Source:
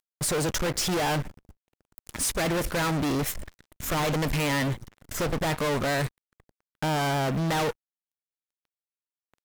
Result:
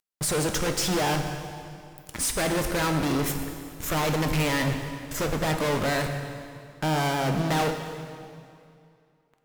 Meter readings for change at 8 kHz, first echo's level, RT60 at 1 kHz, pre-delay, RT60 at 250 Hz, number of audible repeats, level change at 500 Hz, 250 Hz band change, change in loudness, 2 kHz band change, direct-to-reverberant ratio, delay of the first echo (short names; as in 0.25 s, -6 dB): +1.0 dB, none, 2.4 s, 6 ms, 2.6 s, none, +1.0 dB, +1.5 dB, +1.0 dB, +1.0 dB, 5.0 dB, none